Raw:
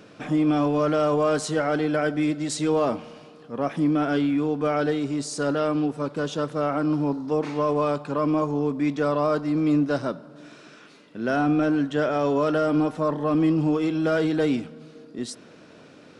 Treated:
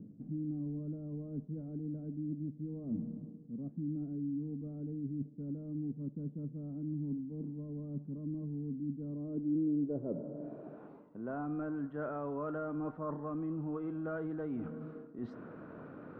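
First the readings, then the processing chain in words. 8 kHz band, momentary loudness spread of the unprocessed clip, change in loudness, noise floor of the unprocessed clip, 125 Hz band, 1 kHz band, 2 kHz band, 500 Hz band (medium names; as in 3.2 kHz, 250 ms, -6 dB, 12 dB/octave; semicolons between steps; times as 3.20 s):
under -40 dB, 8 LU, -16.0 dB, -49 dBFS, -10.0 dB, -21.0 dB, -23.0 dB, -20.0 dB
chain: bass shelf 500 Hz +10 dB; reverse; compression 4:1, threshold -33 dBFS, peak gain reduction 18.5 dB; reverse; low-pass sweep 220 Hz -> 1.3 kHz, 8.98–11.56 s; distance through air 96 m; trim -7 dB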